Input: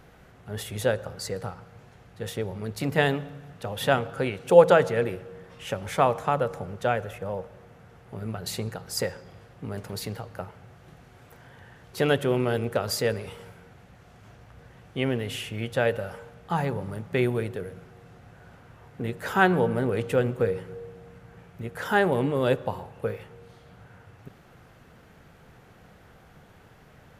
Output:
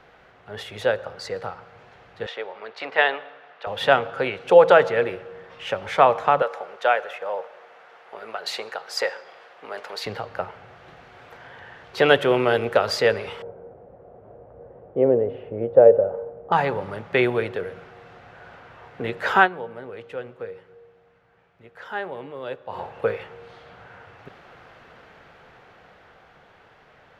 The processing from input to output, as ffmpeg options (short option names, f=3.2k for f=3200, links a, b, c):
-filter_complex "[0:a]asettb=1/sr,asplit=3[a][b][c];[a]atrim=end=2.264[d];[b]atrim=start=2.26:end=3.67,asetpts=PTS-STARTPTS,afade=t=in:d=0.004:c=qsin,afade=t=out:st=1.406:d=0.004:c=qsin,highpass=600,lowpass=3.7k[e];[c]atrim=start=3.666[f];[d][e]acrossfade=d=0.004:c1=hsin:c2=qsin[g];[g][f]acrossfade=d=0.004:c1=qsin:c2=hsin,asettb=1/sr,asplit=3[h][i][j];[h]atrim=end=6.424[k];[i]atrim=start=6.42:end=10.06,asetpts=PTS-STARTPTS,afade=t=in:d=0.004:c=qsin,afade=t=out:st=3.636:d=0.004:c=qsin,highpass=540[l];[j]atrim=start=10.056[m];[k][l]acrossfade=d=0.004:c1=hsin:c2=qsin[n];[n][m]acrossfade=d=0.004:c1=qsin:c2=hsin,asettb=1/sr,asplit=3[o][p][q];[o]atrim=end=12.104[r];[p]atrim=start=12.1:end=12.89,asetpts=PTS-STARTPTS,afade=t=in:d=0.004:c=qsin,afade=t=out:st=0.786:d=0.004:c=qsin,highshelf=f=10k:g=9[s];[q]atrim=start=12.886[t];[r][s]acrossfade=d=0.004:c1=hsin:c2=qsin[u];[u][t]acrossfade=d=0.004:c1=qsin:c2=hsin,asettb=1/sr,asplit=3[v][w][x];[v]atrim=end=13.424[y];[w]atrim=start=13.42:end=16.52,asetpts=PTS-STARTPTS,afade=t=in:d=0.004:c=qsin,afade=t=out:st=3.096:d=0.004:c=qsin,lowpass=f=520:t=q:w=2.5[z];[x]atrim=start=16.516[aa];[y][z]acrossfade=d=0.004:c1=hsin:c2=qsin[ab];[ab][aa]acrossfade=d=0.004:c1=qsin:c2=hsin,asplit=3[ac][ad][ae];[ac]atrim=end=19.49,asetpts=PTS-STARTPTS,afade=t=out:st=19.36:d=0.13:silence=0.158489[af];[ad]atrim=start=19.49:end=22.68,asetpts=PTS-STARTPTS,volume=-16dB[ag];[ae]atrim=start=22.68,asetpts=PTS-STARTPTS,afade=t=in:d=0.13:silence=0.158489[ah];[af][ag][ah]concat=n=3:v=0:a=1,acrossover=split=400 4800:gain=0.224 1 0.0891[ai][aj][ak];[ai][aj][ak]amix=inputs=3:normalize=0,dynaudnorm=f=120:g=31:m=5dB,alimiter=level_in=5.5dB:limit=-1dB:release=50:level=0:latency=1,volume=-1dB"